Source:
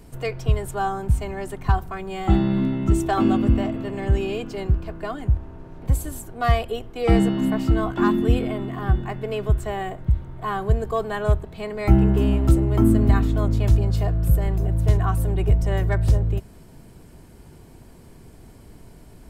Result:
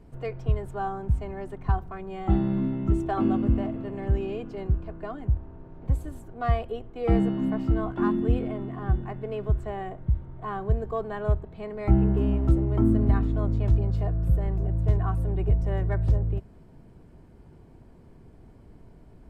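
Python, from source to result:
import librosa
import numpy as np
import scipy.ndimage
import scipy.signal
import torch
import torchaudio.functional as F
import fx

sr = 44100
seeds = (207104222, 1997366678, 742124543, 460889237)

y = fx.lowpass(x, sr, hz=1200.0, slope=6)
y = y * librosa.db_to_amplitude(-4.5)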